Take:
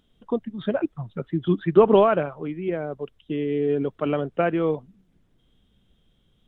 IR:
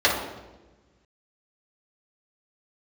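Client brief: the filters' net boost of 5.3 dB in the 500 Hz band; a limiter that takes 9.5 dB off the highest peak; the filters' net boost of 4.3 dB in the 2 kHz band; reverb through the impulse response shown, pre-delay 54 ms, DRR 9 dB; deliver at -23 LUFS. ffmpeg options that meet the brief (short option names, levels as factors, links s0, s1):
-filter_complex "[0:a]equalizer=f=500:t=o:g=6.5,equalizer=f=2000:t=o:g=5.5,alimiter=limit=0.355:level=0:latency=1,asplit=2[s0][s1];[1:a]atrim=start_sample=2205,adelay=54[s2];[s1][s2]afir=irnorm=-1:irlink=0,volume=0.0376[s3];[s0][s3]amix=inputs=2:normalize=0,volume=0.841"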